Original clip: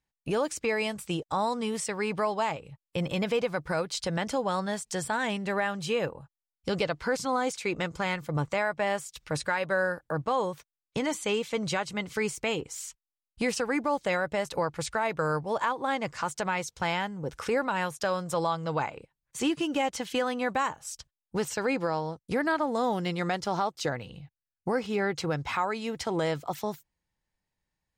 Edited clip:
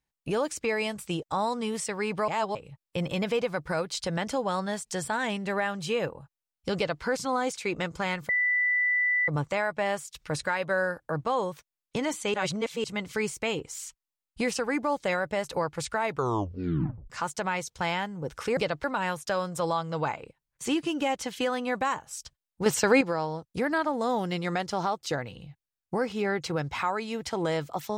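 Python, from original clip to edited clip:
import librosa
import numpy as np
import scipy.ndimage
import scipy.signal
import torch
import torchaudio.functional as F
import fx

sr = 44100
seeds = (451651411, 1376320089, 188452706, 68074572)

y = fx.edit(x, sr, fx.reverse_span(start_s=2.28, length_s=0.27),
    fx.duplicate(start_s=6.76, length_s=0.27, to_s=17.58),
    fx.insert_tone(at_s=8.29, length_s=0.99, hz=1980.0, db=-22.0),
    fx.reverse_span(start_s=11.35, length_s=0.5),
    fx.tape_stop(start_s=15.08, length_s=1.03),
    fx.clip_gain(start_s=21.4, length_s=0.35, db=7.5), tone=tone)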